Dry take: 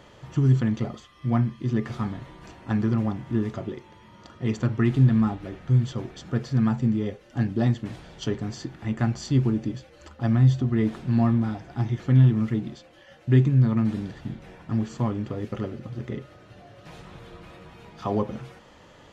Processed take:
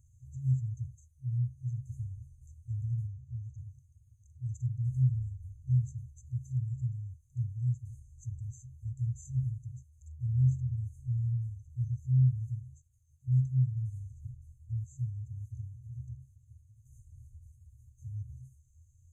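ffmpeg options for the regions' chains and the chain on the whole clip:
-filter_complex "[0:a]asettb=1/sr,asplit=3[s0][s1][s2];[s0]atrim=end=3.074[s3];[s1]atrim=start=3.07:end=3.58,asetpts=PTS-STARTPTS,afade=t=in:d=0.004:c=qsin,afade=t=out:st=0.506:d=0.004:c=qsin,lowpass=5600,equalizer=f=320:w=0.79:g=-13[s4];[s2]atrim=start=3.576[s5];[s3][s4]acrossfade=d=0.004:c1=hsin:c2=qsin[s6];[s6][s5]acrossfade=d=0.004:c1=qsin:c2=hsin,afftfilt=real='re*(1-between(b*sr/4096,130,6100))':imag='im*(1-between(b*sr/4096,130,6100))':win_size=4096:overlap=0.75,equalizer=f=80:t=o:w=0.34:g=13.5,volume=0.422"

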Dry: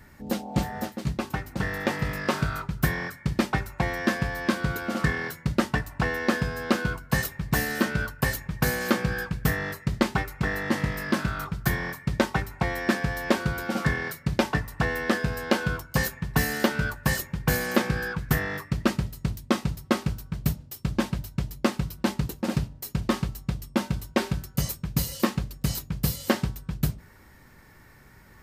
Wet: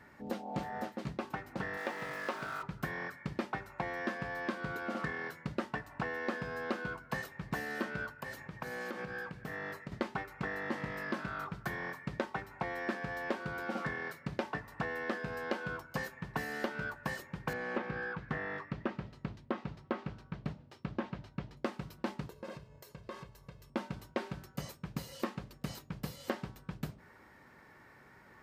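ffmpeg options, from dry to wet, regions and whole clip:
-filter_complex "[0:a]asettb=1/sr,asplit=3[s0][s1][s2];[s0]atrim=end=1.774[s3];[s1]atrim=start=1.77:end=2.63,asetpts=PTS-STARTPTS,afade=t=in:d=0.004:c=qsin,afade=t=out:st=0.856:d=0.004:c=qsin,highpass=f=290:p=1,bandreject=f=50:t=h:w=6,bandreject=f=100:t=h:w=6,bandreject=f=150:t=h:w=6,bandreject=f=200:t=h:w=6,bandreject=f=250:t=h:w=6,bandreject=f=300:t=h:w=6,bandreject=f=350:t=h:w=6,bandreject=f=400:t=h:w=6,acrusher=bits=7:dc=4:mix=0:aa=0.000001[s4];[s2]atrim=start=2.626[s5];[s3][s4]acrossfade=d=0.004:c1=hsin:c2=qsin[s6];[s6][s5]acrossfade=d=0.004:c1=qsin:c2=hsin,asettb=1/sr,asplit=3[s7][s8][s9];[s7]atrim=end=8.114[s10];[s8]atrim=start=8.11:end=9.92,asetpts=PTS-STARTPTS,afade=t=in:d=0.004:c=qsin,afade=t=out:st=1.806:d=0.004:c=qsin,acompressor=threshold=0.0282:ratio=6:attack=3.2:release=140:knee=1:detection=peak,highpass=61[s11];[s9]atrim=start=9.916[s12];[s10][s11]acrossfade=d=0.004:c1=hsin:c2=qsin[s13];[s13][s12]acrossfade=d=0.004:c1=qsin:c2=hsin,asettb=1/sr,asplit=3[s14][s15][s16];[s14]atrim=end=17.534[s17];[s15]atrim=start=17.53:end=21.57,asetpts=PTS-STARTPTS,afade=t=in:d=0.004:c=qsin,afade=t=out:st=4.036:d=0.004:c=qsin,lowpass=4400,acrossover=split=3000[s18][s19];[s19]acompressor=threshold=0.00447:ratio=4:attack=1:release=60[s20];[s18][s20]amix=inputs=2:normalize=0,asoftclip=type=hard:threshold=0.2[s21];[s16]atrim=start=21.566[s22];[s17][s21]acrossfade=d=0.004:c1=hsin:c2=qsin[s23];[s23][s22]acrossfade=d=0.004:c1=qsin:c2=hsin,asettb=1/sr,asplit=3[s24][s25][s26];[s24]atrim=end=22.294[s27];[s25]atrim=start=22.29:end=23.7,asetpts=PTS-STARTPTS,afade=t=in:d=0.004:c=qsin,afade=t=out:st=1.406:d=0.004:c=qsin,aecho=1:1:1.9:0.64,atrim=end_sample=62181,bandreject=f=432.9:t=h:w=4,bandreject=f=865.8:t=h:w=4,bandreject=f=1298.7:t=h:w=4,bandreject=f=1731.6:t=h:w=4,bandreject=f=2164.5:t=h:w=4,bandreject=f=2597.4:t=h:w=4,bandreject=f=3030.3:t=h:w=4,bandreject=f=3463.2:t=h:w=4,bandreject=f=3896.1:t=h:w=4,bandreject=f=4329:t=h:w=4,bandreject=f=4761.9:t=h:w=4,bandreject=f=5194.8:t=h:w=4,bandreject=f=5627.7:t=h:w=4,bandreject=f=6060.6:t=h:w=4,bandreject=f=6493.5:t=h:w=4,bandreject=f=6926.4:t=h:w=4,bandreject=f=7359.3:t=h:w=4,bandreject=f=7792.2:t=h:w=4,bandreject=f=8225.1:t=h:w=4,bandreject=f=8658:t=h:w=4,bandreject=f=9090.9:t=h:w=4,bandreject=f=9523.8:t=h:w=4,bandreject=f=9956.7:t=h:w=4,bandreject=f=10389.6:t=h:w=4,bandreject=f=10822.5:t=h:w=4,bandreject=f=11255.4:t=h:w=4,bandreject=f=11688.3:t=h:w=4,acompressor=threshold=0.0126:ratio=5:attack=3.2:release=140:knee=1:detection=peak[s28];[s26]atrim=start=23.696[s29];[s27][s28]acrossfade=d=0.004:c1=hsin:c2=qsin[s30];[s30][s29]acrossfade=d=0.004:c1=qsin:c2=hsin,highpass=f=440:p=1,acompressor=threshold=0.0158:ratio=2.5,lowpass=f=1500:p=1,volume=1.12"

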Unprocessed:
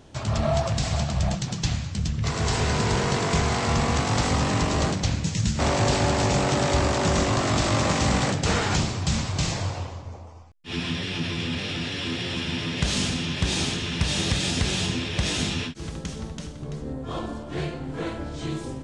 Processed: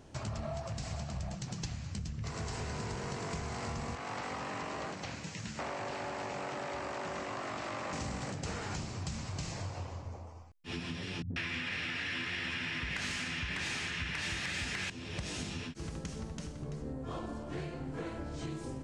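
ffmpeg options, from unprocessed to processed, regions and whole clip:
-filter_complex "[0:a]asettb=1/sr,asplit=3[s0][s1][s2];[s0]atrim=end=3.954[s3];[s1]atrim=start=3.95:end=7.93,asetpts=PTS-STARTPTS,afade=t=in:d=0.004:c=qsin,afade=t=out:st=3.976:d=0.004:c=qsin,highpass=f=620:p=1,acrossover=split=3400[s4][s5];[s5]acompressor=threshold=0.00631:ratio=4:attack=1:release=60[s6];[s4][s6]amix=inputs=2:normalize=0[s7];[s2]atrim=start=7.926[s8];[s3][s7]acrossfade=d=0.004:c1=hsin:c2=qsin[s9];[s9][s8]acrossfade=d=0.004:c1=qsin:c2=hsin,asettb=1/sr,asplit=3[s10][s11][s12];[s10]atrim=end=11.224[s13];[s11]atrim=start=11.22:end=14.9,asetpts=PTS-STARTPTS,afade=t=in:d=0.004:c=qsin,afade=t=out:st=3.676:d=0.004:c=qsin,equalizer=f=1900:t=o:w=1.4:g=14,acontrast=83,acrossover=split=150|450[s14][s15][s16];[s15]adelay=80[s17];[s16]adelay=140[s18];[s14][s17][s18]amix=inputs=3:normalize=0,atrim=end_sample=162288[s19];[s12]atrim=start=14.896[s20];[s13][s19]acrossfade=d=0.004:c1=hsin:c2=qsin[s21];[s21][s20]acrossfade=d=0.004:c1=qsin:c2=hsin,equalizer=f=3500:t=o:w=0.41:g=-5.5,acompressor=threshold=0.0282:ratio=6,volume=0.562"

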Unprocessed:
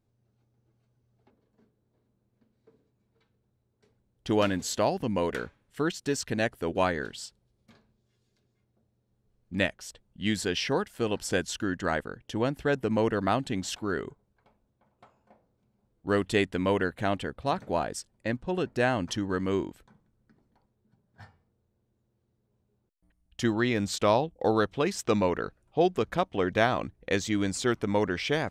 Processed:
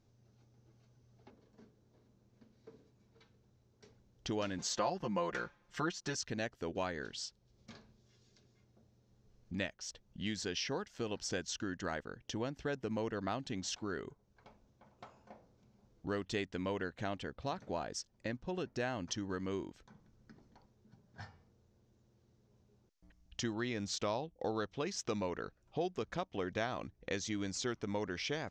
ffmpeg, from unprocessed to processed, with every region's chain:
-filter_complex "[0:a]asettb=1/sr,asplit=3[s0][s1][s2];[s0]atrim=end=4.584[s3];[s1]atrim=start=4.58:end=6.15,asetpts=PTS-STARTPTS,afade=t=in:d=0.004:c=qsin,afade=t=out:st=1.566:d=0.004:c=qsin,equalizer=f=1100:w=0.95:g=8.5,aecho=1:1:5.7:0.81,atrim=end_sample=69237[s4];[s2]atrim=start=6.146[s5];[s3][s4]acrossfade=d=0.004:c1=hsin:c2=qsin[s6];[s6][s5]acrossfade=d=0.004:c1=qsin:c2=hsin,highshelf=f=8000:t=q:w=3:g=-11,acompressor=threshold=0.00224:ratio=2,volume=1.68"

